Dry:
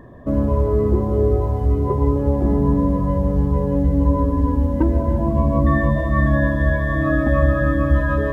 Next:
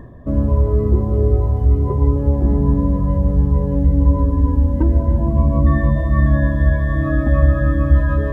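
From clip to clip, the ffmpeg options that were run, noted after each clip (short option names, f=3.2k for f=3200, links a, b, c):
-af "lowshelf=f=170:g=10,areverse,acompressor=mode=upward:threshold=-19dB:ratio=2.5,areverse,volume=-4dB"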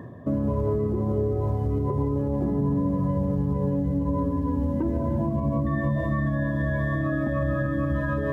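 -af "highpass=f=100:w=0.5412,highpass=f=100:w=1.3066,alimiter=limit=-17dB:level=0:latency=1:release=116"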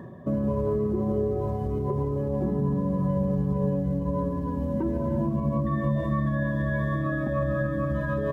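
-af "aecho=1:1:5.3:0.49,volume=-1.5dB"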